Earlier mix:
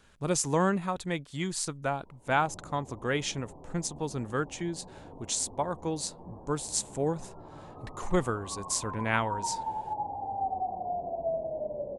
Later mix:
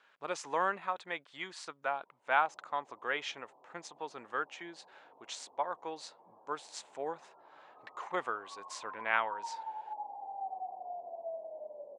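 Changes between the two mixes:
background -5.5 dB; master: add BPF 750–2800 Hz

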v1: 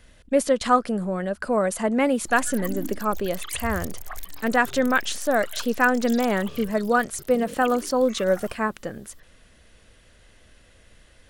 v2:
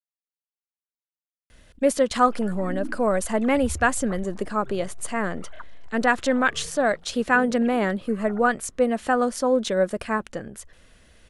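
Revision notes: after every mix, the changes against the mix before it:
speech: entry +1.50 s; background: add LPF 1300 Hz 12 dB/oct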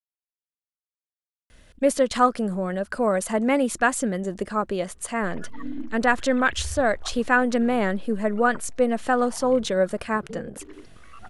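background: entry +2.95 s

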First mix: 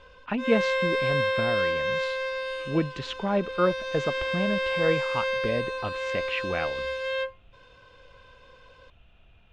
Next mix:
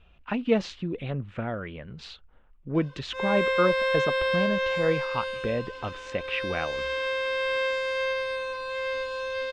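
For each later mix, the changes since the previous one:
background: entry +2.75 s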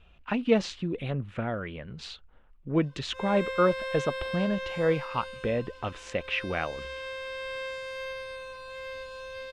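background -9.5 dB; master: remove air absorption 62 m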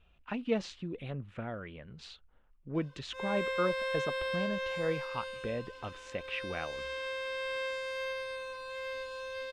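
speech -8.0 dB

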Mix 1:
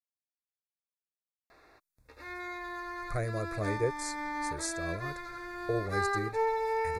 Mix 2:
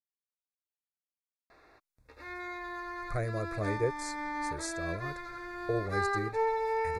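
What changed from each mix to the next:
master: add high shelf 6500 Hz -6.5 dB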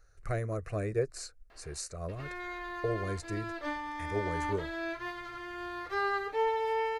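speech: entry -2.85 s; master: remove Butterworth band-stop 3000 Hz, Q 3.2

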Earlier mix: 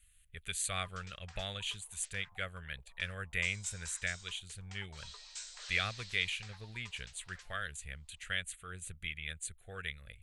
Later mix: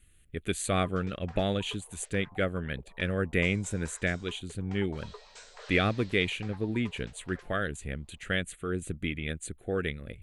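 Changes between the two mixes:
background: add high shelf 3700 Hz -11 dB; master: remove passive tone stack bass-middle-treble 10-0-10

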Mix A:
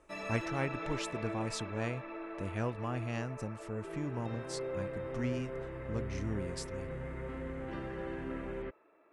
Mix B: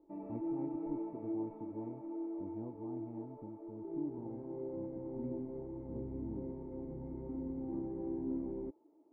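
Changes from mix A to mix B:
background +8.5 dB; master: add vocal tract filter u

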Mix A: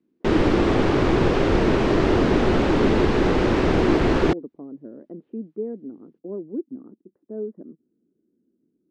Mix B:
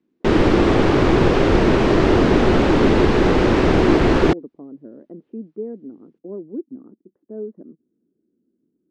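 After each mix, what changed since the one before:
background +4.0 dB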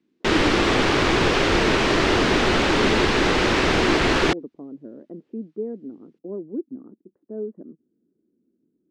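background: add tilt shelf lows -7.5 dB, about 1100 Hz

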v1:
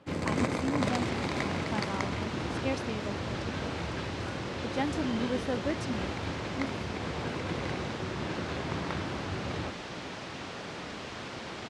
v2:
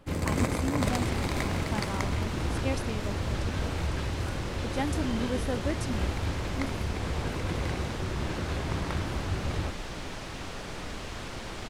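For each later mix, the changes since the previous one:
master: remove BPF 130–5900 Hz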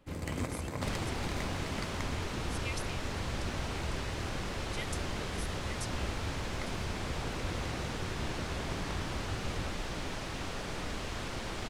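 speech: add brick-wall FIR high-pass 1900 Hz; first sound -8.5 dB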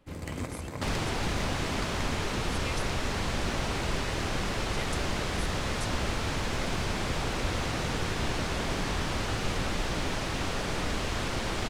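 second sound +7.0 dB

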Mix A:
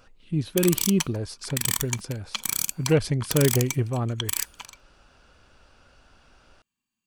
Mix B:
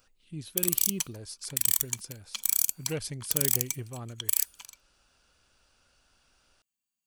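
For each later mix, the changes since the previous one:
master: add pre-emphasis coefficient 0.8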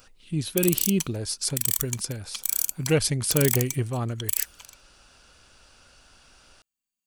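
speech +12.0 dB

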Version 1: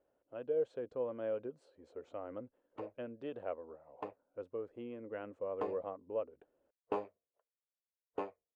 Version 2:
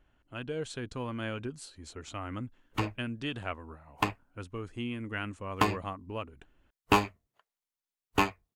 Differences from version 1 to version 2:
speech -7.0 dB; master: remove band-pass 520 Hz, Q 4.9

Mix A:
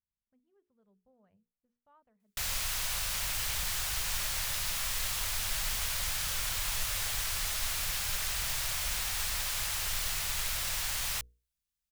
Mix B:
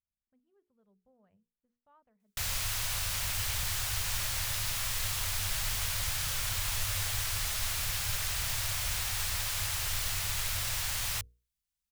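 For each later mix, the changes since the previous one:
background: add bell 99 Hz +11.5 dB 0.55 oct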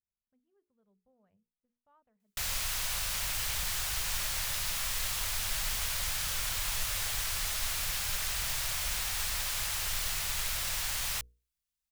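speech -3.0 dB; background: add bell 99 Hz -11.5 dB 0.55 oct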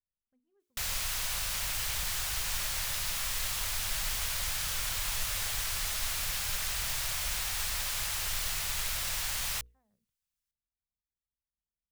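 background: entry -1.60 s

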